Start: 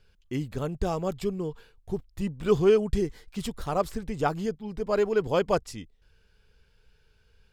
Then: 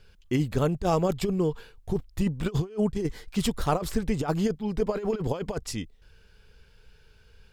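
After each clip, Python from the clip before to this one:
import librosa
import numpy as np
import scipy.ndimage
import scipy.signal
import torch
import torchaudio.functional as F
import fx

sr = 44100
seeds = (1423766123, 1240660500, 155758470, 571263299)

y = fx.over_compress(x, sr, threshold_db=-28.0, ratio=-0.5)
y = F.gain(torch.from_numpy(y), 3.5).numpy()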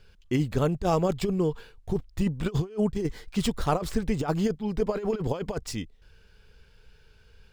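y = scipy.ndimage.median_filter(x, 3, mode='constant')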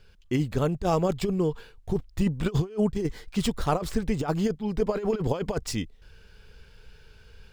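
y = fx.rider(x, sr, range_db=10, speed_s=2.0)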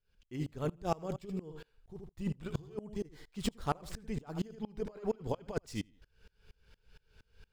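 y = fx.echo_feedback(x, sr, ms=77, feedback_pct=19, wet_db=-12.0)
y = fx.tremolo_decay(y, sr, direction='swelling', hz=4.3, depth_db=28)
y = F.gain(torch.from_numpy(y), -4.0).numpy()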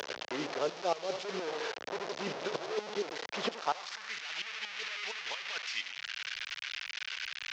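y = fx.delta_mod(x, sr, bps=32000, step_db=-38.5)
y = fx.filter_sweep_highpass(y, sr, from_hz=510.0, to_hz=2400.0, start_s=3.53, end_s=4.27, q=1.6)
y = fx.band_squash(y, sr, depth_pct=70)
y = F.gain(torch.from_numpy(y), 6.0).numpy()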